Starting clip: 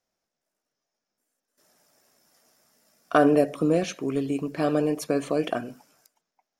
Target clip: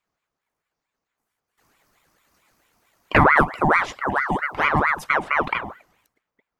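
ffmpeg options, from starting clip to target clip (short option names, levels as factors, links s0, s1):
-af "asetnsamples=n=441:p=0,asendcmd='5.16 equalizer g -15',equalizer=f=8000:w=0.31:g=-9,aeval=exprs='val(0)*sin(2*PI*1100*n/s+1100*0.6/4.5*sin(2*PI*4.5*n/s))':c=same,volume=2.24"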